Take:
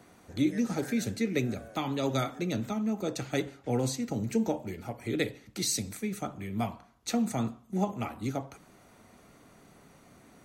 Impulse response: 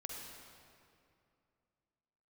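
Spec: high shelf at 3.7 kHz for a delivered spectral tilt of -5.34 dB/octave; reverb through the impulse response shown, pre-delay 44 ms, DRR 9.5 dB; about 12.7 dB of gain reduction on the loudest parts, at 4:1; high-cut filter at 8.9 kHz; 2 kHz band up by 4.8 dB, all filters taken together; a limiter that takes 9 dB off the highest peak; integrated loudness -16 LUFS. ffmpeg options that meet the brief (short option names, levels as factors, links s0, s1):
-filter_complex "[0:a]lowpass=8900,equalizer=f=2000:t=o:g=7.5,highshelf=f=3700:g=-7.5,acompressor=threshold=0.0126:ratio=4,alimiter=level_in=2.99:limit=0.0631:level=0:latency=1,volume=0.335,asplit=2[s0][s1];[1:a]atrim=start_sample=2205,adelay=44[s2];[s1][s2]afir=irnorm=-1:irlink=0,volume=0.422[s3];[s0][s3]amix=inputs=2:normalize=0,volume=23.7"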